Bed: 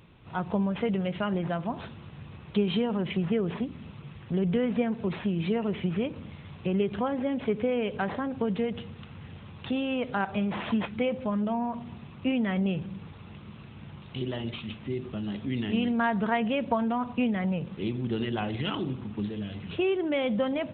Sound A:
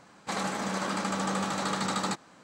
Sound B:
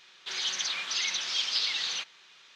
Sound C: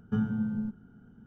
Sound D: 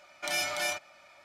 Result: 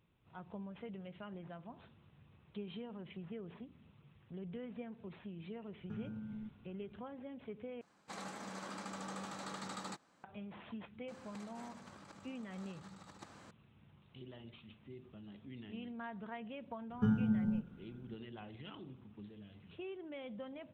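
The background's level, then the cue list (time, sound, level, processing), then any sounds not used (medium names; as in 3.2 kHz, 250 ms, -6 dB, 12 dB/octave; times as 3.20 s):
bed -19.5 dB
5.78 s: add C -10 dB + compression, threshold -32 dBFS
7.81 s: replace with A -15 dB
11.08 s: add A -14 dB + compressor with a negative ratio -39 dBFS, ratio -0.5
16.90 s: add C -2.5 dB
not used: B, D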